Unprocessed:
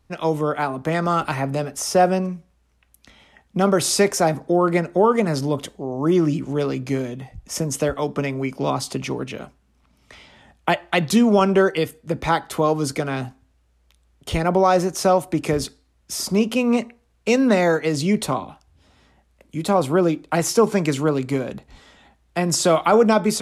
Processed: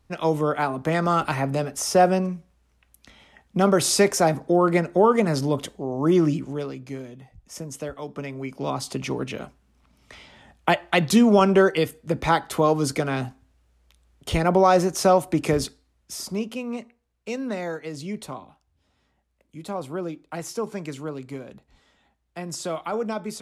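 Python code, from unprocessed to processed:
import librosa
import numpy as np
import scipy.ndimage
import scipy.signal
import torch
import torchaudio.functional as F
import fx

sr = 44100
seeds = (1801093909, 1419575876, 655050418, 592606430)

y = fx.gain(x, sr, db=fx.line((6.27, -1.0), (6.78, -11.0), (8.02, -11.0), (9.24, -0.5), (15.57, -0.5), (16.71, -12.5)))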